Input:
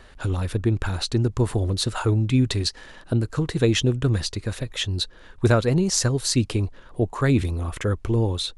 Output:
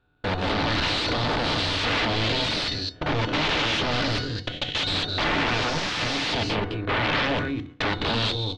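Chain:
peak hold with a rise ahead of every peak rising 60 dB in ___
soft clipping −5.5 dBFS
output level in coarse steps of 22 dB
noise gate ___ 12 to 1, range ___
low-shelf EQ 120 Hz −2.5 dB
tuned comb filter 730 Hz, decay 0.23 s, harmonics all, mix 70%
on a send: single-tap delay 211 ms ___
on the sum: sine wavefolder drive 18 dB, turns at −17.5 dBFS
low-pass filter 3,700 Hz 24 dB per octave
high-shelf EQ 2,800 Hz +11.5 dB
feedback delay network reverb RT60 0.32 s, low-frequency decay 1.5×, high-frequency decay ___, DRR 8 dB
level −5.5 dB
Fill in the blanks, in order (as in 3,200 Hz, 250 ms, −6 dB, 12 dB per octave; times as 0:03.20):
1.80 s, −37 dBFS, −32 dB, −14 dB, 0.3×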